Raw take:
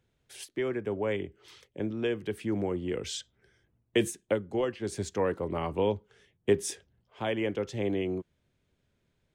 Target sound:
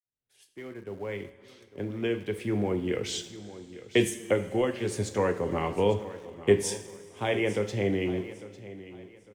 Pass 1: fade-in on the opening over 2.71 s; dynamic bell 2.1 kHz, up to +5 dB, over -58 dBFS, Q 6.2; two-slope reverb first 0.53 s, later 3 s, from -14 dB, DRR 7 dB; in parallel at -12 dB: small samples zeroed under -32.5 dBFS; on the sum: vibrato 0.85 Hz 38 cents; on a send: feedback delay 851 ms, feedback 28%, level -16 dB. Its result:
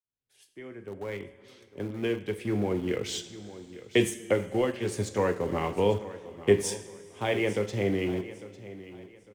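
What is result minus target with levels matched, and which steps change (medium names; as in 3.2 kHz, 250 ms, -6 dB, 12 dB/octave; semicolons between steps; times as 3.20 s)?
small samples zeroed: distortion +10 dB
change: small samples zeroed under -42 dBFS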